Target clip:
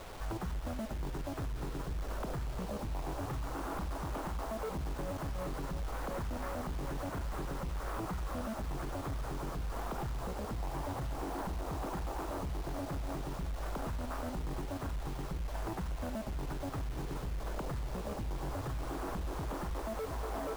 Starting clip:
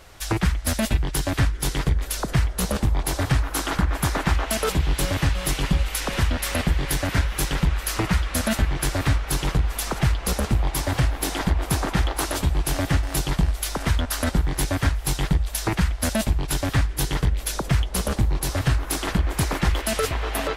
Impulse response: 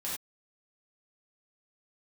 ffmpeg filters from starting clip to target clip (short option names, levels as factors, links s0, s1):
-af "lowpass=f=1200:w=0.5412,lowpass=f=1200:w=1.3066,equalizer=f=69:w=0.53:g=-6,bandreject=f=127.6:t=h:w=4,bandreject=f=255.2:t=h:w=4,bandreject=f=382.8:t=h:w=4,bandreject=f=510.4:t=h:w=4,bandreject=f=638:t=h:w=4,bandreject=f=765.6:t=h:w=4,bandreject=f=893.2:t=h:w=4,bandreject=f=1020.8:t=h:w=4,acompressor=threshold=0.0316:ratio=6,alimiter=level_in=2.51:limit=0.0631:level=0:latency=1:release=47,volume=0.398,asoftclip=type=tanh:threshold=0.015,acrusher=bits=8:mix=0:aa=0.000001,volume=1.68"